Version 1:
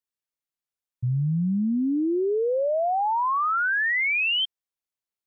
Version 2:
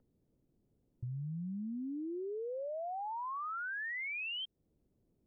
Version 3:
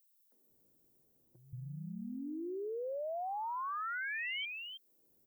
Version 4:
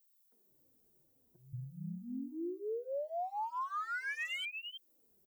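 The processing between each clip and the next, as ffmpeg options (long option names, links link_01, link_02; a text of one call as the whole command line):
ffmpeg -i in.wav -filter_complex "[0:a]acrossover=split=390|930[link_01][link_02][link_03];[link_01]acompressor=mode=upward:threshold=-37dB:ratio=2.5[link_04];[link_04][link_02][link_03]amix=inputs=3:normalize=0,alimiter=level_in=0.5dB:limit=-24dB:level=0:latency=1:release=21,volume=-0.5dB,acompressor=threshold=-32dB:ratio=6,volume=-6.5dB" out.wav
ffmpeg -i in.wav -filter_complex "[0:a]aemphasis=mode=production:type=bsi,acompressor=threshold=-41dB:ratio=6,acrossover=split=210|2600[link_01][link_02][link_03];[link_02]adelay=320[link_04];[link_01]adelay=500[link_05];[link_05][link_04][link_03]amix=inputs=3:normalize=0,volume=4.5dB" out.wav
ffmpeg -i in.wav -filter_complex "[0:a]asoftclip=type=hard:threshold=-35.5dB,asplit=2[link_01][link_02];[link_02]adelay=2.8,afreqshift=-2.1[link_03];[link_01][link_03]amix=inputs=2:normalize=1,volume=3dB" out.wav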